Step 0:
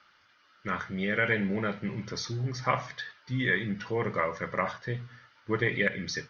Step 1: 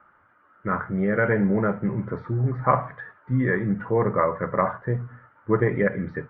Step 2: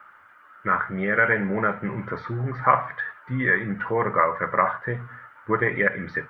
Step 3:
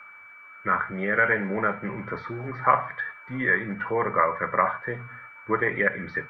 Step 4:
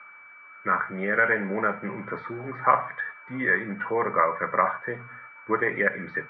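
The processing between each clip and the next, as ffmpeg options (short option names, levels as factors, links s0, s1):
-af "lowpass=f=1400:w=0.5412,lowpass=f=1400:w=1.3066,volume=2.66"
-filter_complex "[0:a]tiltshelf=f=900:g=-9.5,asplit=2[s0][s1];[s1]acompressor=threshold=0.0355:ratio=6,volume=0.794[s2];[s0][s2]amix=inputs=2:normalize=0"
-filter_complex "[0:a]aeval=exprs='val(0)+0.00631*sin(2*PI*2300*n/s)':c=same,acrossover=split=190|1100[s0][s1][s2];[s0]asoftclip=type=hard:threshold=0.0119[s3];[s3][s1][s2]amix=inputs=3:normalize=0,volume=0.841"
-af "highpass=150,lowpass=3000"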